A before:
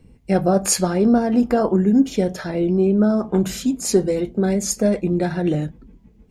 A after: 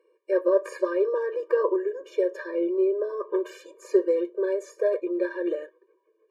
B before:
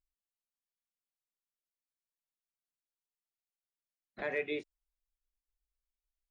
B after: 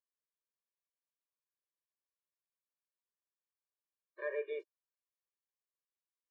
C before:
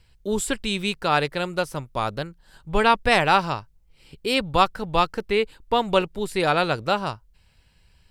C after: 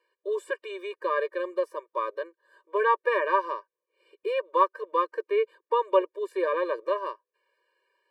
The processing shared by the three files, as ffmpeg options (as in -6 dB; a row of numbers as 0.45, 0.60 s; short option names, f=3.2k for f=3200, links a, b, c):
-filter_complex "[0:a]acrossover=split=350 2000:gain=0.0891 1 0.126[a][b][c];[a][b][c]amix=inputs=3:normalize=0,acrossover=split=2600[d][e];[e]acompressor=threshold=-45dB:ratio=4:attack=1:release=60[f];[d][f]amix=inputs=2:normalize=0,afftfilt=real='re*eq(mod(floor(b*sr/1024/310),2),1)':imag='im*eq(mod(floor(b*sr/1024/310),2),1)':win_size=1024:overlap=0.75,volume=1dB"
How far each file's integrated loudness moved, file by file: -7.0, -3.5, -5.0 LU